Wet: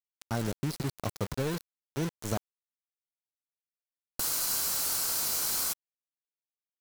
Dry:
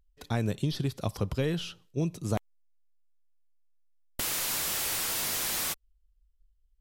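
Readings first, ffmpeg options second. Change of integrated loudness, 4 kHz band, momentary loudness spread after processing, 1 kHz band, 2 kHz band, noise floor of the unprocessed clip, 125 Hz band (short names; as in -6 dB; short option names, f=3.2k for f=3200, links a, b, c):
0.0 dB, -1.5 dB, 10 LU, -0.5 dB, -4.0 dB, -69 dBFS, -4.0 dB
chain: -af "afftfilt=real='re*(1-between(b*sr/4096,1600,3900))':imag='im*(1-between(b*sr/4096,1600,3900))':win_size=4096:overlap=0.75,aeval=exprs='val(0)*gte(abs(val(0)),0.0266)':c=same,tiltshelf=f=1.2k:g=-3"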